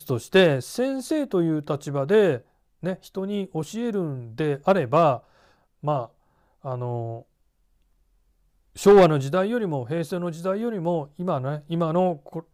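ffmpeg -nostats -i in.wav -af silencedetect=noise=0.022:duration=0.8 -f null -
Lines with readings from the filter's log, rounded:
silence_start: 7.20
silence_end: 8.78 | silence_duration: 1.58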